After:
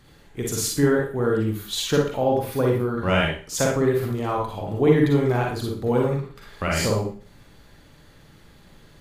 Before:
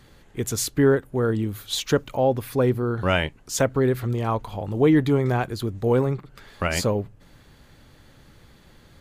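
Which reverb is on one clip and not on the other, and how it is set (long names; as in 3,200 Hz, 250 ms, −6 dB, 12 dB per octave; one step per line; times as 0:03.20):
four-comb reverb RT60 0.41 s, DRR −1.5 dB
level −2.5 dB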